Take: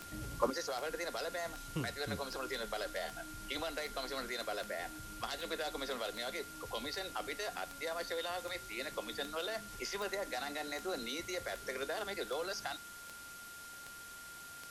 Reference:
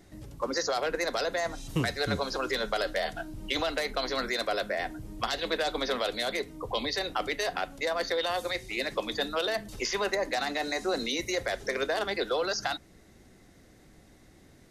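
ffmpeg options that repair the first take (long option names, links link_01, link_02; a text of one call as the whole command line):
ffmpeg -i in.wav -af "adeclick=threshold=4,bandreject=frequency=1400:width=30,afwtdn=0.0025,asetnsamples=nb_out_samples=441:pad=0,asendcmd='0.5 volume volume 10dB',volume=0dB" out.wav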